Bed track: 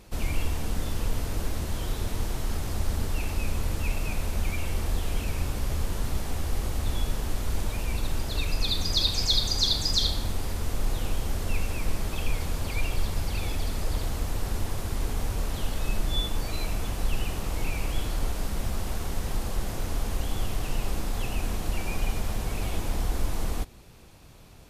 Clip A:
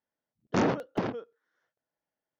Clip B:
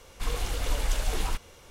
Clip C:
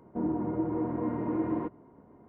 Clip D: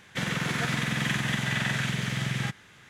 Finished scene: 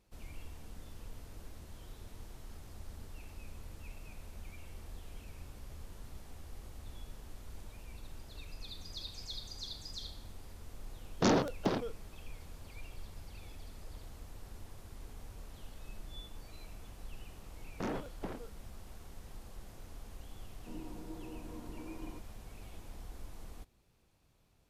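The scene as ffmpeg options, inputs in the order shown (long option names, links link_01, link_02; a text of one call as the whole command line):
ffmpeg -i bed.wav -i cue0.wav -i cue1.wav -i cue2.wav -filter_complex "[1:a]asplit=2[link_01][link_02];[0:a]volume=-20dB[link_03];[link_01]highshelf=frequency=3100:width_type=q:width=1.5:gain=6.5,atrim=end=2.39,asetpts=PTS-STARTPTS,volume=-2dB,afade=type=in:duration=0.004:curve=hsin,afade=type=out:start_time=2.386:duration=0.004:curve=hsin,adelay=10680[link_04];[link_02]atrim=end=2.39,asetpts=PTS-STARTPTS,volume=-12.5dB,afade=type=in:duration=0.004:curve=hsin,afade=type=out:start_time=2.386:duration=0.004:curve=hsin,adelay=17260[link_05];[3:a]atrim=end=2.28,asetpts=PTS-STARTPTS,volume=-17.5dB,afade=type=in:duration=0.004:curve=hsin,afade=type=out:start_time=2.276:duration=0.004:curve=hsin,adelay=20510[link_06];[link_03][link_04][link_05][link_06]amix=inputs=4:normalize=0" out.wav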